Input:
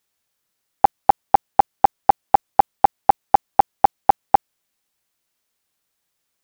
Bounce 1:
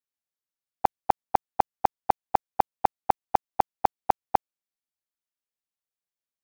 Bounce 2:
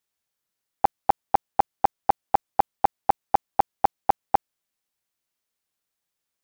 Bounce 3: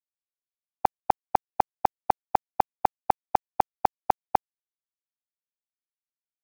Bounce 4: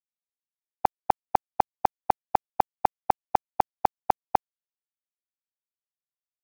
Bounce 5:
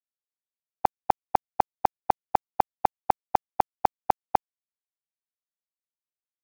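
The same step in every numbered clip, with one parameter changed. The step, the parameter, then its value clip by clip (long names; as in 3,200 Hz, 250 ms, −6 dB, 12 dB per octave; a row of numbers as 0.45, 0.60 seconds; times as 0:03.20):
noise gate, range: −21, −8, −59, −47, −34 decibels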